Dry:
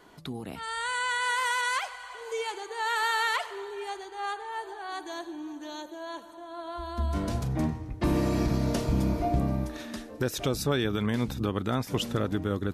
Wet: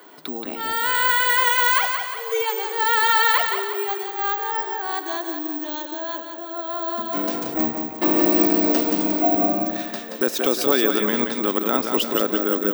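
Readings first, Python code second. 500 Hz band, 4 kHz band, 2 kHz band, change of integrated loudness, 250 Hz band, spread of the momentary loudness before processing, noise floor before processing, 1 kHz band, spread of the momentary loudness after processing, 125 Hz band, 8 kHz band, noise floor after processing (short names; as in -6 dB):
+9.0 dB, +8.5 dB, +8.5 dB, +10.0 dB, +7.0 dB, 13 LU, -45 dBFS, +9.0 dB, 12 LU, -11.0 dB, +7.0 dB, -34 dBFS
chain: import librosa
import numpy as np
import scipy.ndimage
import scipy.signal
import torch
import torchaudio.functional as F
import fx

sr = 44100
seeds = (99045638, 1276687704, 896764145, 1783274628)

y = scipy.signal.sosfilt(scipy.signal.butter(4, 260.0, 'highpass', fs=sr, output='sos'), x)
y = fx.echo_feedback(y, sr, ms=177, feedback_pct=46, wet_db=-6)
y = (np.kron(scipy.signal.resample_poly(y, 1, 2), np.eye(2)[0]) * 2)[:len(y)]
y = fx.high_shelf(y, sr, hz=6700.0, db=-4.0)
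y = y * librosa.db_to_amplitude(8.0)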